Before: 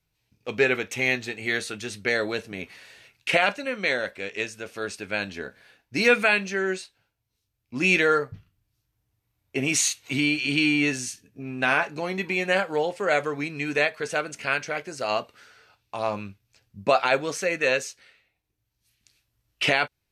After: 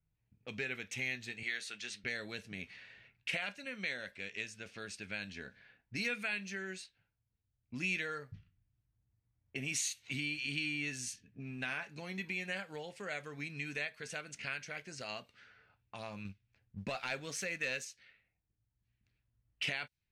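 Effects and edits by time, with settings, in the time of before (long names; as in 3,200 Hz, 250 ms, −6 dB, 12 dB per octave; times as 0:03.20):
0:01.43–0:02.04: meter weighting curve A
0:16.25–0:17.85: leveller curve on the samples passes 1
whole clip: downward compressor 2 to 1, threshold −38 dBFS; low-pass that shuts in the quiet parts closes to 1,100 Hz, open at −33.5 dBFS; flat-topped bell 620 Hz −8.5 dB 2.5 octaves; level −3 dB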